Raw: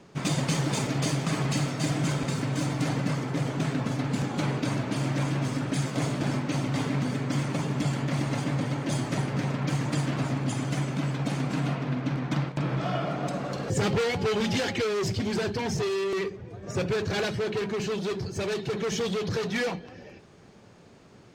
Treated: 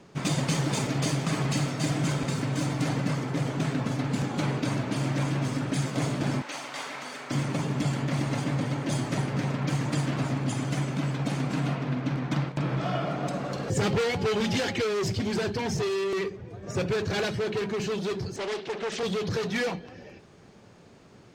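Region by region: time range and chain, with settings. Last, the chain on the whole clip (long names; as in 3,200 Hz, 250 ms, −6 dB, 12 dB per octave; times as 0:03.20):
0:06.42–0:07.31: high-pass filter 760 Hz + flutter between parallel walls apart 7.5 metres, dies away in 0.3 s
0:18.36–0:19.03: band-pass filter 340–5,100 Hz + highs frequency-modulated by the lows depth 0.48 ms
whole clip: no processing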